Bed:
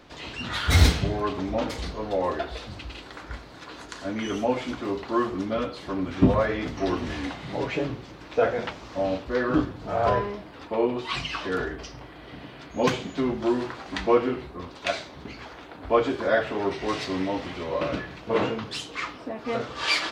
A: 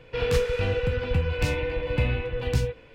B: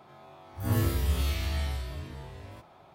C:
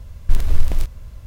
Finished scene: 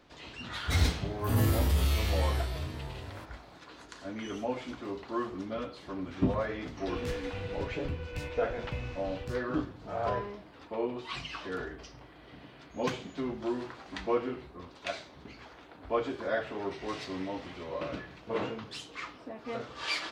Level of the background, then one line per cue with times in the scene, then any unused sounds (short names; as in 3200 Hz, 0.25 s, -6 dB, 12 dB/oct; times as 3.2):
bed -9 dB
0.64 add B -2 dB + sample leveller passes 1
6.74 add A -13 dB + ending faded out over 0.52 s
not used: C